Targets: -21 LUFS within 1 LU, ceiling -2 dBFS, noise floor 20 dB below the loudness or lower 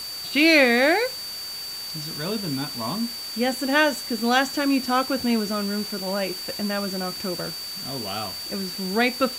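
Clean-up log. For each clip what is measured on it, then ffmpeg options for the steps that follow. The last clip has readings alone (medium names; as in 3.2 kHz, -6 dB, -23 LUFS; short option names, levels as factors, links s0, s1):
steady tone 4.6 kHz; tone level -32 dBFS; noise floor -34 dBFS; noise floor target -44 dBFS; loudness -23.5 LUFS; peak level -5.0 dBFS; loudness target -21.0 LUFS
-> -af "bandreject=f=4600:w=30"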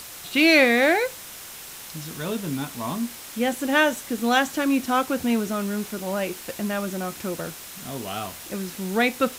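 steady tone not found; noise floor -40 dBFS; noise floor target -44 dBFS
-> -af "afftdn=nr=6:nf=-40"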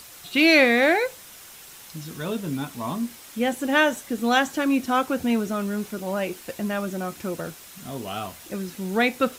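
noise floor -45 dBFS; loudness -24.0 LUFS; peak level -5.5 dBFS; loudness target -21.0 LUFS
-> -af "volume=1.41"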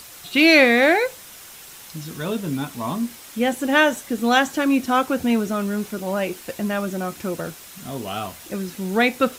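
loudness -21.0 LUFS; peak level -2.5 dBFS; noise floor -42 dBFS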